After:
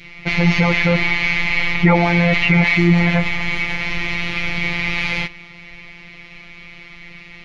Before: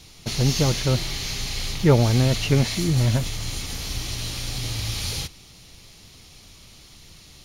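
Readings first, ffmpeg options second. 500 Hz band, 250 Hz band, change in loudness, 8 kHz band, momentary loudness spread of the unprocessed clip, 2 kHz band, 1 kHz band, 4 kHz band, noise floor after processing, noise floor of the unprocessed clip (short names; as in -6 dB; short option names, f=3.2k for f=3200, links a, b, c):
+3.5 dB, +8.0 dB, +6.5 dB, under -10 dB, 11 LU, +18.5 dB, +10.5 dB, +1.5 dB, -40 dBFS, -48 dBFS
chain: -af "lowpass=f=2.2k:t=q:w=6.2,adynamicequalizer=threshold=0.00891:dfrequency=870:dqfactor=1.9:tfrequency=870:tqfactor=1.9:attack=5:release=100:ratio=0.375:range=3:mode=boostabove:tftype=bell,afftfilt=real='hypot(re,im)*cos(PI*b)':imag='0':win_size=1024:overlap=0.75,apsyclip=13dB,volume=-2.5dB"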